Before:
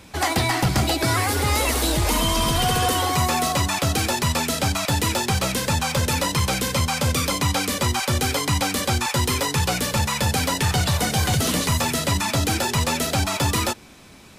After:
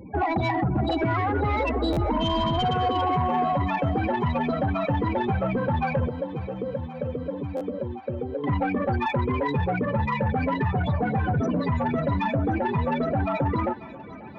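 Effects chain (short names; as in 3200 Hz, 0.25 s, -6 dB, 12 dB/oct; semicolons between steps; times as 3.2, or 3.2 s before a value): HPF 280 Hz 6 dB/oct; tilt -2 dB/oct; compressor 6:1, threshold -25 dBFS, peak gain reduction 8 dB; loudest bins only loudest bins 16; 6.08–8.44 ladder low-pass 590 Hz, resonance 50%; soft clip -24.5 dBFS, distortion -18 dB; thinning echo 0.538 s, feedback 81%, high-pass 410 Hz, level -18 dB; stuck buffer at 1.92/7.56, samples 512, times 3; gain +7.5 dB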